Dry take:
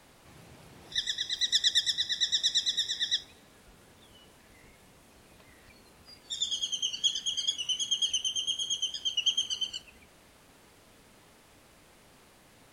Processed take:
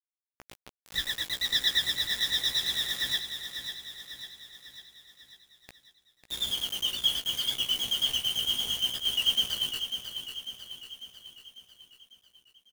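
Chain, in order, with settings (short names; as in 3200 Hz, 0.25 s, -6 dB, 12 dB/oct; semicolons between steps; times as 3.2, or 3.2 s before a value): LPF 2700 Hz 12 dB/oct; low shelf 96 Hz +5.5 dB; bit-crush 7-bit; doubler 16 ms -4.5 dB; on a send: feedback echo 0.547 s, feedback 54%, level -8.5 dB; on the sum: gain +5 dB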